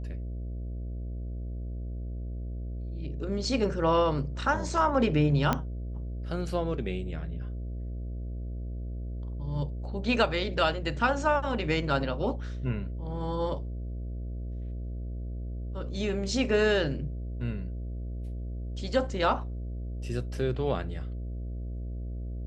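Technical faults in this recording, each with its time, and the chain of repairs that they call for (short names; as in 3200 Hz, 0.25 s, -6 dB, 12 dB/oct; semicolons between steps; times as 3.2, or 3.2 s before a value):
buzz 60 Hz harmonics 11 -35 dBFS
5.53 pop -12 dBFS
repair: de-click; de-hum 60 Hz, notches 11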